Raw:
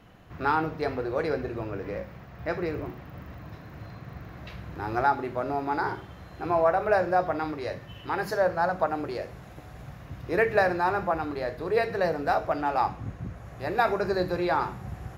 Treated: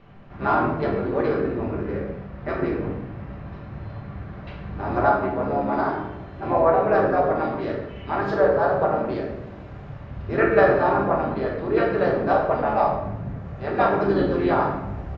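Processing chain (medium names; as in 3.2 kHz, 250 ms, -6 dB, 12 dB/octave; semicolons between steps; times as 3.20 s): distance through air 190 m; harmony voices -5 st -3 dB, -3 st -7 dB; simulated room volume 330 m³, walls mixed, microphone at 1.2 m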